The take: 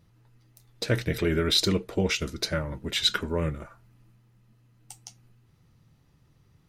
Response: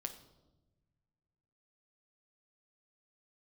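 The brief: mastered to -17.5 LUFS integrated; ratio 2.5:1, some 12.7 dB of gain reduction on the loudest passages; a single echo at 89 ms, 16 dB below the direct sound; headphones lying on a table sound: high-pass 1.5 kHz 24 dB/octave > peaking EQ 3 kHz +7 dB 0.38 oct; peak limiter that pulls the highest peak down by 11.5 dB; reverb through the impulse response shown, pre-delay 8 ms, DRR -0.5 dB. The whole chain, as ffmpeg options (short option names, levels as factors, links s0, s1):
-filter_complex "[0:a]acompressor=threshold=0.0112:ratio=2.5,alimiter=level_in=2.51:limit=0.0631:level=0:latency=1,volume=0.398,aecho=1:1:89:0.158,asplit=2[s0][s1];[1:a]atrim=start_sample=2205,adelay=8[s2];[s1][s2]afir=irnorm=-1:irlink=0,volume=1.33[s3];[s0][s3]amix=inputs=2:normalize=0,highpass=f=1500:w=0.5412,highpass=f=1500:w=1.3066,equalizer=f=3000:t=o:w=0.38:g=7,volume=15.8"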